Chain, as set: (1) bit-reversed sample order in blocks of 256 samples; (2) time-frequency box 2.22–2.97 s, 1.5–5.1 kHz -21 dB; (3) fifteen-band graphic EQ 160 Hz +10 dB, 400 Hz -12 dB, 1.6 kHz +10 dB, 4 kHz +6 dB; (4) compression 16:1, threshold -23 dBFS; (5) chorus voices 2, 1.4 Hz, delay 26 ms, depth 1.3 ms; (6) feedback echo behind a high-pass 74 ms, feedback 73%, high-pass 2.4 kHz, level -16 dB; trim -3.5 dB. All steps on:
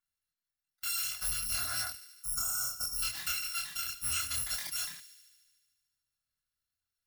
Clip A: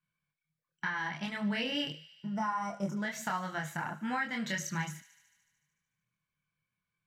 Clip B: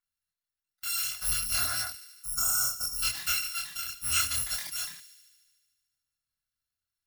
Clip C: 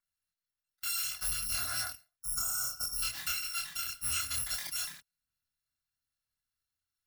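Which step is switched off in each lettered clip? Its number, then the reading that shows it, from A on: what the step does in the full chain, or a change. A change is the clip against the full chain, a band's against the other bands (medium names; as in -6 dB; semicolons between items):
1, 8 kHz band -23.0 dB; 4, mean gain reduction 2.5 dB; 6, echo-to-direct -19.0 dB to none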